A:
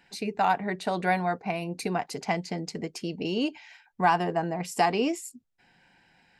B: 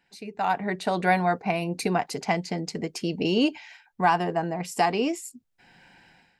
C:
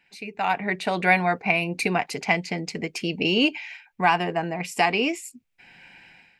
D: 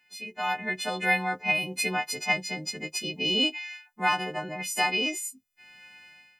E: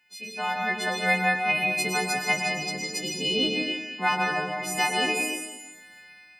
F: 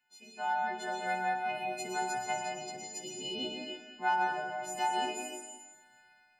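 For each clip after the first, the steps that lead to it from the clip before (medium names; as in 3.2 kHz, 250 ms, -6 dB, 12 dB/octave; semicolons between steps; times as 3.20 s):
level rider gain up to 16 dB; trim -8.5 dB
peaking EQ 2.4 kHz +12 dB 0.68 oct
partials quantised in pitch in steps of 3 st; trim -7 dB
plate-style reverb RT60 1.2 s, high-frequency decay 0.9×, pre-delay 95 ms, DRR 0 dB
inharmonic resonator 120 Hz, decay 0.25 s, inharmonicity 0.002; flutter echo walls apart 10.1 m, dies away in 0.29 s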